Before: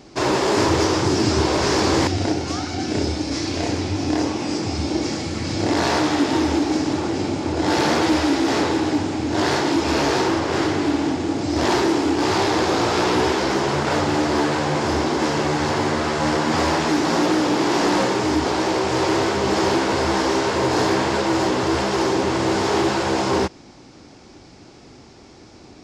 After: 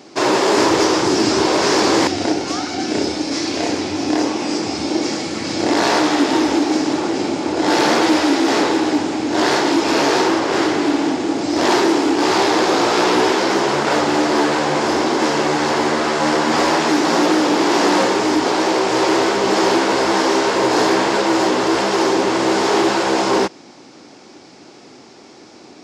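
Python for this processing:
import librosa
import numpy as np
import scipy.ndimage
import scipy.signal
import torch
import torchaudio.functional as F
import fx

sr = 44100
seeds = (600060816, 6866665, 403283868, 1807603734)

y = scipy.signal.sosfilt(scipy.signal.butter(2, 230.0, 'highpass', fs=sr, output='sos'), x)
y = y * 10.0 ** (4.5 / 20.0)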